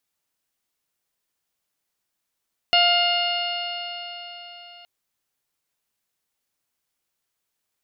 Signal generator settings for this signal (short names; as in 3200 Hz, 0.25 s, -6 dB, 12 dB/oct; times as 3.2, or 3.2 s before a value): stretched partials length 2.12 s, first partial 699 Hz, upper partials -7/-7/3/-14/-3.5/-13.5 dB, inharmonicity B 0.0018, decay 4.19 s, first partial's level -19 dB